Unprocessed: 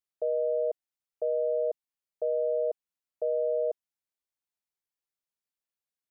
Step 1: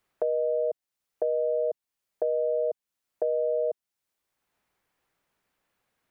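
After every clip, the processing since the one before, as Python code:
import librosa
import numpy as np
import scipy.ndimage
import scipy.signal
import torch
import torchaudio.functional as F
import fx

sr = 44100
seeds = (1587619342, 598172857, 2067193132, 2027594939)

y = fx.band_squash(x, sr, depth_pct=70)
y = y * librosa.db_to_amplitude(1.5)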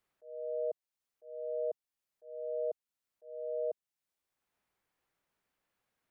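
y = fx.auto_swell(x, sr, attack_ms=475.0)
y = y * librosa.db_to_amplitude(-6.5)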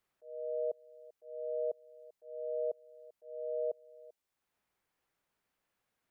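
y = x + 10.0 ** (-20.0 / 20.0) * np.pad(x, (int(391 * sr / 1000.0), 0))[:len(x)]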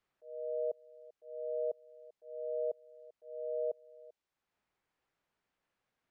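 y = fx.air_absorb(x, sr, metres=78.0)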